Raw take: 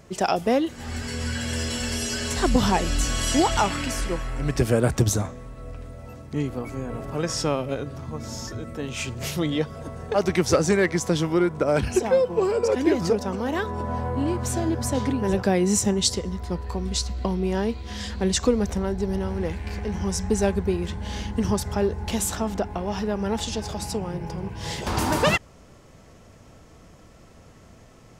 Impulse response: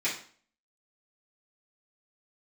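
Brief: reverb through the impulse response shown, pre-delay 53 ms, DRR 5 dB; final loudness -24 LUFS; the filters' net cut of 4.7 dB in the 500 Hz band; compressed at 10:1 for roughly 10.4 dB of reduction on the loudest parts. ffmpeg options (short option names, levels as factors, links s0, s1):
-filter_complex "[0:a]equalizer=f=500:t=o:g=-6,acompressor=threshold=0.0447:ratio=10,asplit=2[s0][s1];[1:a]atrim=start_sample=2205,adelay=53[s2];[s1][s2]afir=irnorm=-1:irlink=0,volume=0.2[s3];[s0][s3]amix=inputs=2:normalize=0,volume=2.37"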